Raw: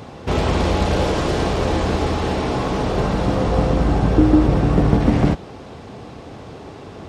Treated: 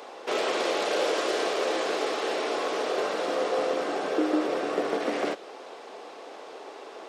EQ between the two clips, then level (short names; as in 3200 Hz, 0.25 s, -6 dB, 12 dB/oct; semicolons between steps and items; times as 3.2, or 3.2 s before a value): HPF 400 Hz 24 dB/oct; dynamic EQ 890 Hz, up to -7 dB, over -41 dBFS, Q 3.1; -2.5 dB